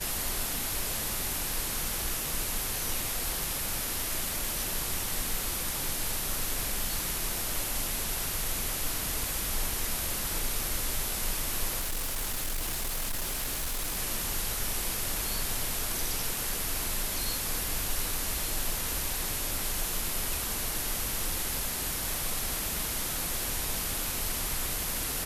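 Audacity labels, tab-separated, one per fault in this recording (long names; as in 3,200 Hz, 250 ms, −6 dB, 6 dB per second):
11.790000	13.990000	clipping −28 dBFS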